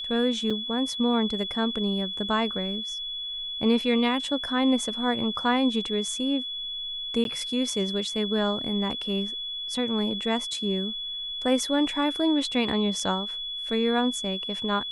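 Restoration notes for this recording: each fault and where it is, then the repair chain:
whine 3.4 kHz -31 dBFS
0.50–0.51 s: dropout 5.2 ms
7.24–7.25 s: dropout 12 ms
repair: band-stop 3.4 kHz, Q 30; interpolate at 0.50 s, 5.2 ms; interpolate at 7.24 s, 12 ms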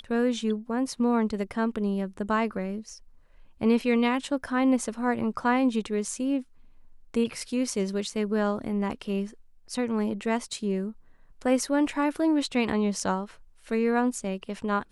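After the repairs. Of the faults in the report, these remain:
nothing left

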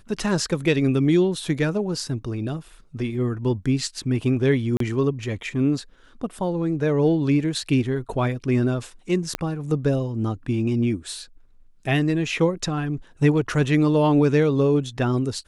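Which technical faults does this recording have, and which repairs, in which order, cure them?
4.77–4.80 s: dropout 33 ms
9.35 s: pop -9 dBFS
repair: de-click; interpolate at 4.77 s, 33 ms

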